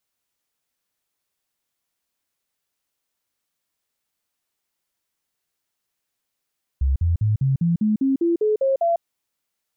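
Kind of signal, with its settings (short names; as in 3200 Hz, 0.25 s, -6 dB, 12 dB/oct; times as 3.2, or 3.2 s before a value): stepped sine 67.3 Hz up, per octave 3, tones 11, 0.15 s, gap 0.05 s -16 dBFS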